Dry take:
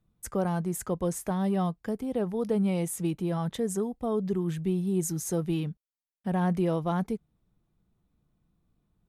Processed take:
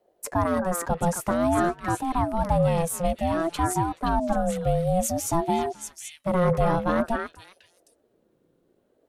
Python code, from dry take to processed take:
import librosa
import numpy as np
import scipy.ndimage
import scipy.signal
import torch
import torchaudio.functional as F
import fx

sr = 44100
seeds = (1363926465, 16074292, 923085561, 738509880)

y = fx.echo_stepped(x, sr, ms=261, hz=1100.0, octaves=1.4, feedback_pct=70, wet_db=-0.5)
y = fx.ring_lfo(y, sr, carrier_hz=440.0, swing_pct=25, hz=0.53)
y = y * 10.0 ** (7.5 / 20.0)